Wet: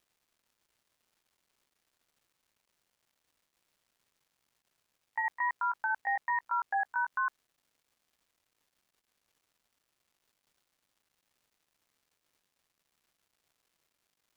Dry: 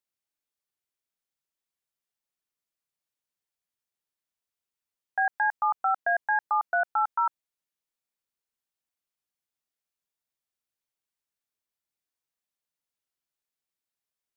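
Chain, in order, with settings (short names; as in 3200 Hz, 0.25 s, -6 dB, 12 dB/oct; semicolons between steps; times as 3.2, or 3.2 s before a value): gliding pitch shift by +4 st ending unshifted; limiter -22.5 dBFS, peak gain reduction 5 dB; crackle 510/s -62 dBFS; gain -1 dB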